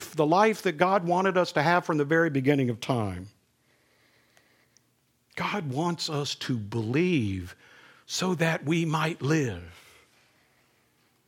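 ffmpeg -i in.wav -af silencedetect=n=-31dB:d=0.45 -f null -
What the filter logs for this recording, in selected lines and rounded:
silence_start: 3.23
silence_end: 5.37 | silence_duration: 2.15
silence_start: 7.41
silence_end: 8.11 | silence_duration: 0.69
silence_start: 9.59
silence_end: 11.27 | silence_duration: 1.68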